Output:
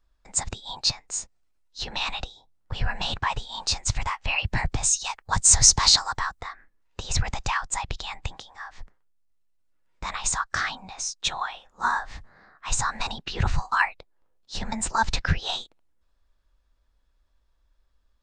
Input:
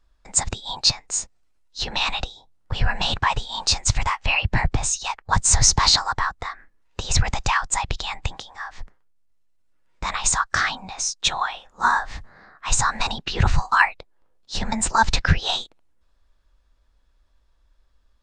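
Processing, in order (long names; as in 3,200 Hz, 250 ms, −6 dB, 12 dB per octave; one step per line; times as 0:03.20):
0:04.38–0:06.40: high-shelf EQ 4,700 Hz +10.5 dB
level −5.5 dB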